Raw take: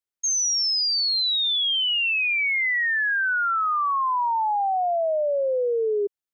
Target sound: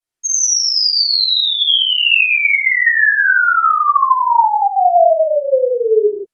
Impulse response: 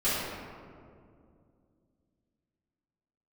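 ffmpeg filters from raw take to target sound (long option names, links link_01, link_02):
-filter_complex "[1:a]atrim=start_sample=2205,afade=type=out:start_time=0.15:duration=0.01,atrim=end_sample=7056,asetrate=25137,aresample=44100[link_01];[0:a][link_01]afir=irnorm=-1:irlink=0,volume=-3.5dB"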